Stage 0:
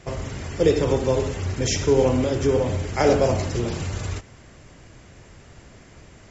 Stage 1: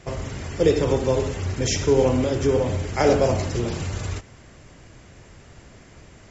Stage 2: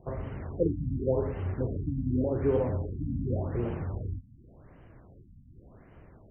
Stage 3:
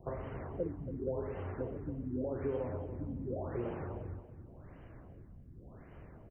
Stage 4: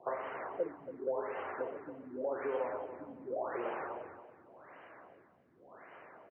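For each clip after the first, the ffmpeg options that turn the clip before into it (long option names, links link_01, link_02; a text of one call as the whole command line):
ffmpeg -i in.wav -af anull out.wav
ffmpeg -i in.wav -af "equalizer=frequency=2600:width_type=o:width=1.1:gain=-8.5,afftfilt=real='re*lt(b*sr/1024,260*pow(3200/260,0.5+0.5*sin(2*PI*0.88*pts/sr)))':imag='im*lt(b*sr/1024,260*pow(3200/260,0.5+0.5*sin(2*PI*0.88*pts/sr)))':win_size=1024:overlap=0.75,volume=-5.5dB" out.wav
ffmpeg -i in.wav -filter_complex "[0:a]acrossover=split=340|1500[link_01][link_02][link_03];[link_01]acompressor=threshold=-43dB:ratio=4[link_04];[link_02]acompressor=threshold=-37dB:ratio=4[link_05];[link_03]acompressor=threshold=-60dB:ratio=4[link_06];[link_04][link_05][link_06]amix=inputs=3:normalize=0,asplit=2[link_07][link_08];[link_08]aecho=0:1:279|558|837:0.266|0.0798|0.0239[link_09];[link_07][link_09]amix=inputs=2:normalize=0" out.wav
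ffmpeg -i in.wav -af "highpass=750,lowpass=2600,volume=10dB" out.wav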